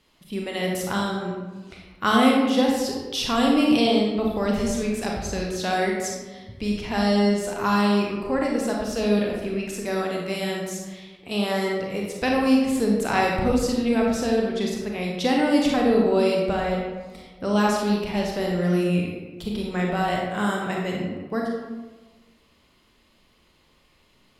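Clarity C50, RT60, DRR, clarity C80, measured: 1.0 dB, 1.3 s, -1.5 dB, 3.5 dB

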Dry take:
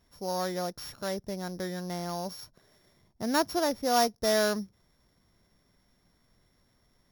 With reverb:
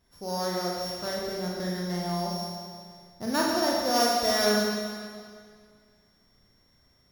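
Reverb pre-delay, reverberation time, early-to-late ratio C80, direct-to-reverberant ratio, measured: 33 ms, 2.0 s, 1.0 dB, -3.5 dB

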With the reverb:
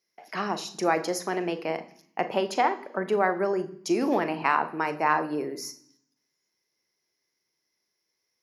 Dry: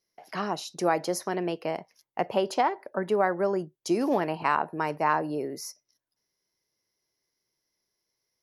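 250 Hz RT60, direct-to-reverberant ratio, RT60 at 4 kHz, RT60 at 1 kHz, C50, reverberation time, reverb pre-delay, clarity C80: 1.0 s, 11.0 dB, 0.85 s, 0.65 s, 15.5 dB, 0.65 s, 36 ms, 18.5 dB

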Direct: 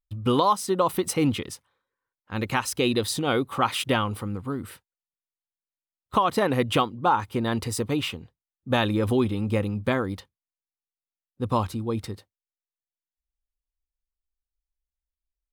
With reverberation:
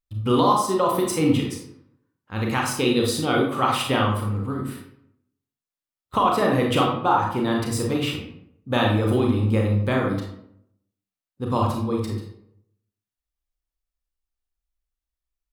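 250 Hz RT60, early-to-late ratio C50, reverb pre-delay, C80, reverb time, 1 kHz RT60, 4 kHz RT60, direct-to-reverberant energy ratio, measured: 0.80 s, 4.0 dB, 28 ms, 7.5 dB, 0.70 s, 0.70 s, 0.45 s, -1.0 dB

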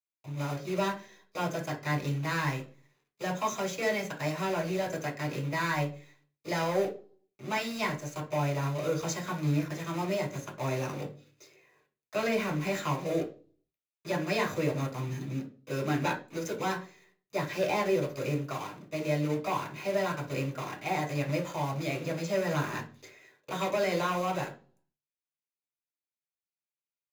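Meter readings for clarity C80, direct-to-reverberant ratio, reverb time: 17.5 dB, 0.0 dB, 0.40 s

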